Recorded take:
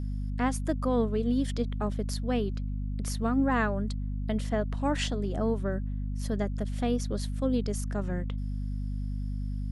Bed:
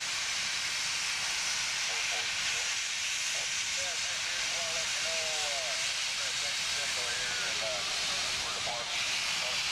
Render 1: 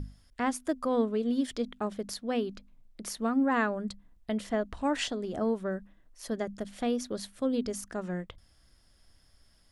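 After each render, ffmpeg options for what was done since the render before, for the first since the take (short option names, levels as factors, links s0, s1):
-af "bandreject=f=50:t=h:w=6,bandreject=f=100:t=h:w=6,bandreject=f=150:t=h:w=6,bandreject=f=200:t=h:w=6,bandreject=f=250:t=h:w=6"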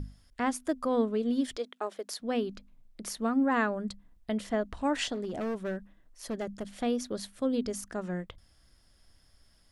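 -filter_complex "[0:a]asettb=1/sr,asplit=3[s0][s1][s2];[s0]atrim=end=1.574[s3];[s1]atrim=start=1.57:end=2.2,asetpts=PTS-STARTPTS,afade=t=in:d=0.004:c=qsin,afade=t=out:st=0.626:d=0.004:c=qsin,highpass=f=350:w=0.5412,highpass=f=350:w=1.3066[s4];[s2]atrim=start=2.196[s5];[s3][s4]acrossfade=d=0.004:c1=hsin:c2=qsin[s6];[s6][s5]acrossfade=d=0.004:c1=qsin:c2=hsin,asettb=1/sr,asplit=3[s7][s8][s9];[s7]atrim=end=5.144[s10];[s8]atrim=start=5.14:end=6.81,asetpts=PTS-STARTPTS,afade=t=in:d=0.004:c=qsin,afade=t=out:st=1.666:d=0.004:c=qsin,asoftclip=type=hard:threshold=0.0335[s11];[s9]atrim=start=6.806[s12];[s10][s11]acrossfade=d=0.004:c1=hsin:c2=qsin[s13];[s13][s12]acrossfade=d=0.004:c1=qsin:c2=hsin"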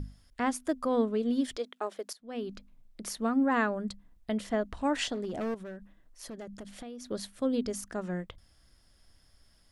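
-filter_complex "[0:a]asettb=1/sr,asplit=3[s0][s1][s2];[s0]atrim=end=5.544[s3];[s1]atrim=start=5.54:end=7.11,asetpts=PTS-STARTPTS,afade=t=in:d=0.004:c=qsin,afade=t=out:st=1.566:d=0.004:c=qsin,acompressor=threshold=0.01:ratio=6:attack=3.2:release=140:knee=1:detection=peak[s4];[s2]atrim=start=7.106[s5];[s3][s4]acrossfade=d=0.004:c1=hsin:c2=qsin[s6];[s6][s5]acrossfade=d=0.004:c1=qsin:c2=hsin,asplit=2[s7][s8];[s7]atrim=end=2.13,asetpts=PTS-STARTPTS,afade=t=out:st=2.126:d=0.004:c=hsin:silence=0.125893[s9];[s8]atrim=start=2.13,asetpts=PTS-STARTPTS,afade=t=in:d=0.4:c=qua:silence=0.125893[s10];[s9][s10]concat=n=2:v=0:a=1"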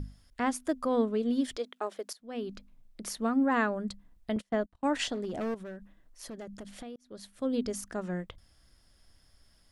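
-filter_complex "[0:a]asettb=1/sr,asplit=3[s0][s1][s2];[s0]atrim=end=4.364[s3];[s1]atrim=start=4.36:end=5,asetpts=PTS-STARTPTS,afade=t=in:d=0.004:c=qsin,afade=t=out:st=0.636:d=0.004:c=qsin,agate=range=0.0251:threshold=0.0141:ratio=16:release=100:detection=peak[s4];[s2]atrim=start=4.996[s5];[s3][s4]acrossfade=d=0.004:c1=hsin:c2=qsin[s6];[s6][s5]acrossfade=d=0.004:c1=qsin:c2=hsin,asplit=2[s7][s8];[s7]atrim=end=6.96,asetpts=PTS-STARTPTS,afade=t=out:st=6.956:d=0.004:c=hsin[s9];[s8]atrim=start=6.96,asetpts=PTS-STARTPTS,afade=t=in:d=0.64[s10];[s9][s10]concat=n=2:v=0:a=1"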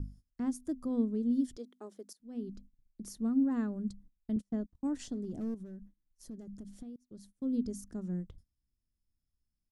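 -af "agate=range=0.1:threshold=0.00251:ratio=16:detection=peak,firequalizer=gain_entry='entry(240,0);entry(580,-17);entry(2400,-23);entry(5800,-9)':delay=0.05:min_phase=1"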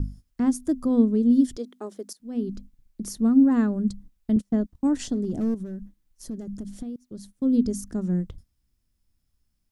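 -af "volume=3.76"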